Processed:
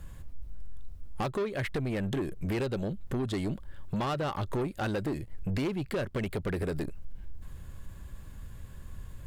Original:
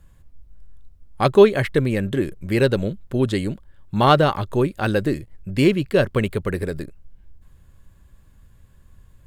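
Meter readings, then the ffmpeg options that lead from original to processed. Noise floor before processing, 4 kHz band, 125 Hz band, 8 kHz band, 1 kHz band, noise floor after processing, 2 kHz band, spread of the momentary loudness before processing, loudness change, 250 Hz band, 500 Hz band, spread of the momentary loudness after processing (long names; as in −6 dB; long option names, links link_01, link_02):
−53 dBFS, −13.5 dB, −10.5 dB, −8.5 dB, −14.0 dB, −47 dBFS, −12.0 dB, 14 LU, −13.0 dB, −11.0 dB, −15.0 dB, 19 LU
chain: -af "acompressor=threshold=-30dB:ratio=12,asoftclip=type=tanh:threshold=-33.5dB,volume=7dB"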